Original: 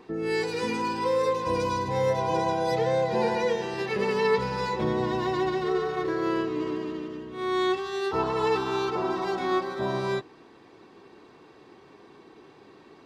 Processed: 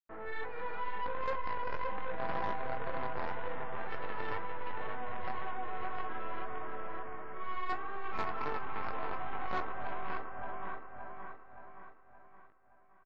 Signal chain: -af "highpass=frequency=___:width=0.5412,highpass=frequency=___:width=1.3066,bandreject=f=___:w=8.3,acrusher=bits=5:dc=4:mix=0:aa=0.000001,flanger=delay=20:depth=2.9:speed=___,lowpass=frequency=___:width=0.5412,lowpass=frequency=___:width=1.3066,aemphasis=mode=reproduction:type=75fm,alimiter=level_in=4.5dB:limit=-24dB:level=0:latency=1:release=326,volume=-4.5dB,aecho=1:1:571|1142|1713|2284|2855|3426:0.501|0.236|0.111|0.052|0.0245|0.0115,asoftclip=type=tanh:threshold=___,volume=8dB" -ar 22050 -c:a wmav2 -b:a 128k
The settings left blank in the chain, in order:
690, 690, 910, 2, 1800, 1800, -35.5dB